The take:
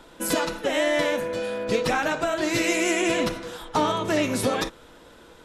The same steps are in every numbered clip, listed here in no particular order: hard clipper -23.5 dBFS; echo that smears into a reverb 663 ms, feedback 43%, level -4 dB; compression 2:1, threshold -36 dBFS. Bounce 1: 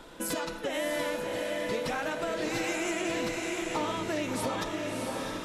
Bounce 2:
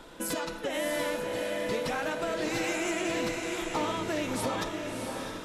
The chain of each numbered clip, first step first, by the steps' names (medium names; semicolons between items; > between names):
echo that smears into a reverb > compression > hard clipper; compression > echo that smears into a reverb > hard clipper